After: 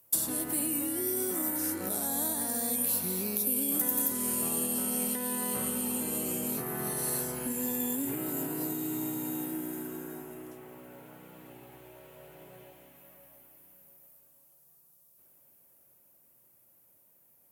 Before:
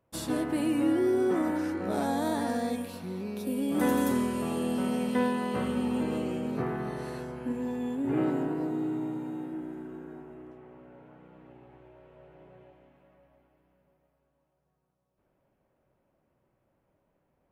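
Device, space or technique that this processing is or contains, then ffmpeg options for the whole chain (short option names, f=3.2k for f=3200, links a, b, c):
FM broadcast chain: -filter_complex "[0:a]highpass=77,dynaudnorm=f=240:g=21:m=3dB,acrossover=split=220|1800|7600[a][b][c][d];[a]acompressor=threshold=-38dB:ratio=4[e];[b]acompressor=threshold=-33dB:ratio=4[f];[c]acompressor=threshold=-56dB:ratio=4[g];[d]acompressor=threshold=-58dB:ratio=4[h];[e][f][g][h]amix=inputs=4:normalize=0,aemphasis=mode=production:type=75fm,alimiter=level_in=2dB:limit=-24dB:level=0:latency=1:release=266,volume=-2dB,asoftclip=type=hard:threshold=-28.5dB,lowpass=f=15k:w=0.5412,lowpass=f=15k:w=1.3066,aemphasis=mode=production:type=75fm"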